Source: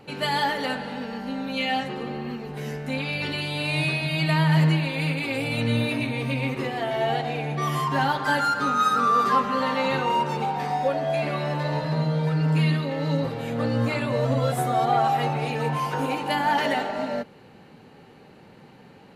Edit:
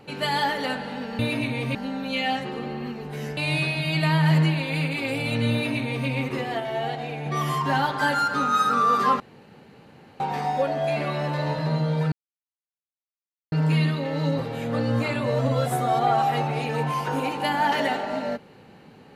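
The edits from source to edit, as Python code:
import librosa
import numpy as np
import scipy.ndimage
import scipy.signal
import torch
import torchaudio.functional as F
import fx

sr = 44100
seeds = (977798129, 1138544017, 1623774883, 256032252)

y = fx.edit(x, sr, fx.cut(start_s=2.81, length_s=0.82),
    fx.duplicate(start_s=5.78, length_s=0.56, to_s=1.19),
    fx.clip_gain(start_s=6.86, length_s=0.66, db=-3.5),
    fx.room_tone_fill(start_s=9.46, length_s=1.0),
    fx.insert_silence(at_s=12.38, length_s=1.4), tone=tone)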